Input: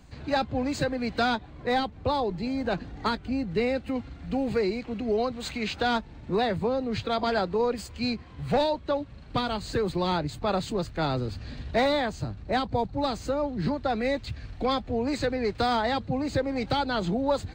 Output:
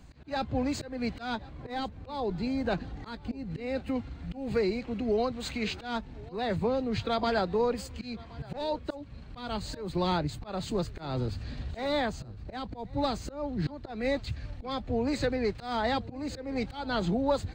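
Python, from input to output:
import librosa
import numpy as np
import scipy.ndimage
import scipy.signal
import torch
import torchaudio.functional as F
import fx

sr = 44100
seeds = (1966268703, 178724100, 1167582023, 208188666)

p1 = fx.low_shelf(x, sr, hz=150.0, db=3.5)
p2 = fx.auto_swell(p1, sr, attack_ms=231.0)
p3 = p2 + fx.echo_single(p2, sr, ms=1074, db=-22.5, dry=0)
y = p3 * librosa.db_to_amplitude(-2.0)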